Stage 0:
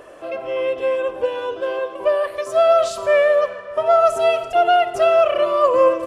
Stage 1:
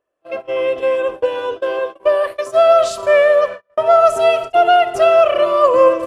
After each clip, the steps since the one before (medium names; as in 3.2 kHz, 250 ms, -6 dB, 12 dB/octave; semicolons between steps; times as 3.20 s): gate -27 dBFS, range -38 dB; trim +3.5 dB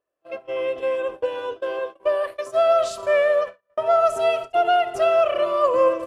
endings held to a fixed fall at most 300 dB/s; trim -7 dB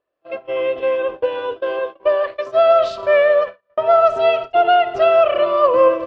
low-pass 4.4 kHz 24 dB/octave; trim +5 dB